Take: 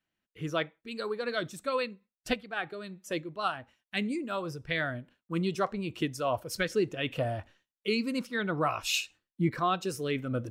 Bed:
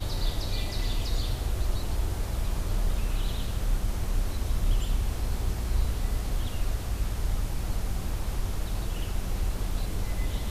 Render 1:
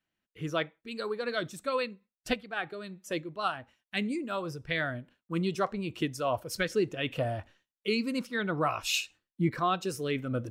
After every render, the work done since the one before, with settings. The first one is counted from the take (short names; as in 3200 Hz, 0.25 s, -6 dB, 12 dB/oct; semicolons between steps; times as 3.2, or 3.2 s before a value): nothing audible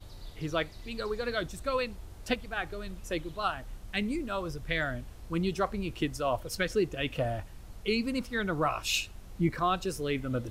add bed -17 dB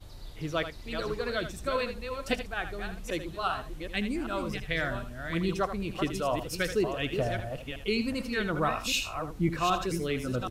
reverse delay 0.388 s, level -7 dB; on a send: echo 79 ms -10.5 dB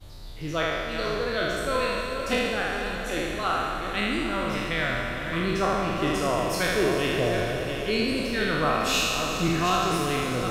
spectral trails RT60 1.90 s; on a send: diffused feedback echo 0.457 s, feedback 67%, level -10 dB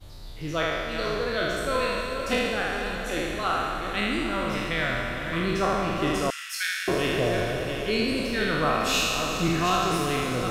6.3–6.88 steep high-pass 1400 Hz 72 dB/oct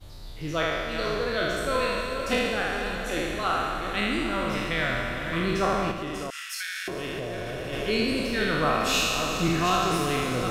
5.91–7.73 compressor, threshold -29 dBFS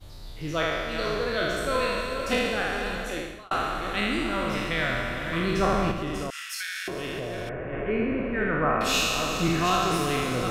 2.99–3.51 fade out; 5.57–6.76 low shelf 200 Hz +7 dB; 7.49–8.81 steep low-pass 2200 Hz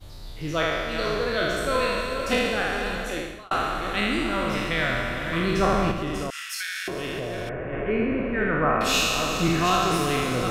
gain +2 dB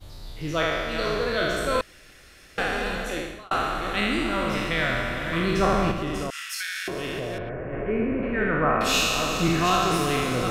1.81–2.58 room tone; 7.38–8.23 air absorption 430 m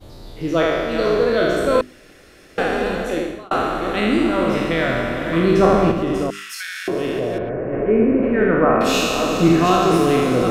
bell 340 Hz +11.5 dB 2.6 oct; notches 50/100/150/200/250/300/350/400 Hz